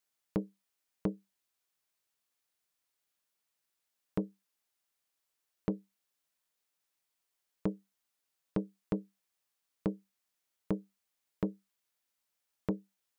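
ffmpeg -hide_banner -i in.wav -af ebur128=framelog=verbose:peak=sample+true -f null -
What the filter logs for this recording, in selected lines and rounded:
Integrated loudness:
  I:         -39.6 LUFS
  Threshold: -50.2 LUFS
Loudness range:
  LRA:         6.0 LU
  Threshold: -64.3 LUFS
  LRA low:   -48.0 LUFS
  LRA high:  -42.0 LUFS
Sample peak:
  Peak:      -18.9 dBFS
True peak:
  Peak:      -18.9 dBFS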